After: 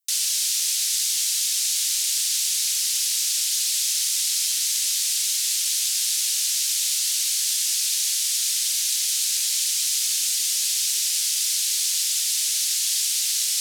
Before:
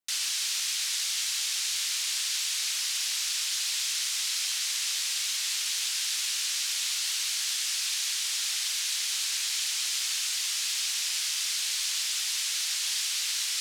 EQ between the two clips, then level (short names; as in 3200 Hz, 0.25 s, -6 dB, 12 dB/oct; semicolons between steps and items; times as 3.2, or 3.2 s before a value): differentiator; bell 210 Hz -9 dB 1.5 oct; +8.5 dB